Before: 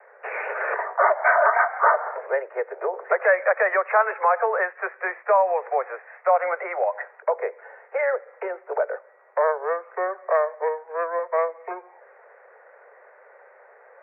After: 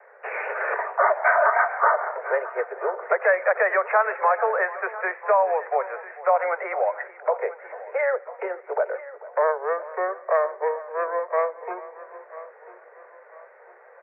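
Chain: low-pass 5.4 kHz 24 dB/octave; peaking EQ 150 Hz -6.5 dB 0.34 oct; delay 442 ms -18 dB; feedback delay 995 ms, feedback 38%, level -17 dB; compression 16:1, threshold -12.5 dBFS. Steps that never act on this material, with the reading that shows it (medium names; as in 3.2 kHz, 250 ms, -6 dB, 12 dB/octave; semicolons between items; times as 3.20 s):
low-pass 5.4 kHz: input has nothing above 2.4 kHz; peaking EQ 150 Hz: input has nothing below 340 Hz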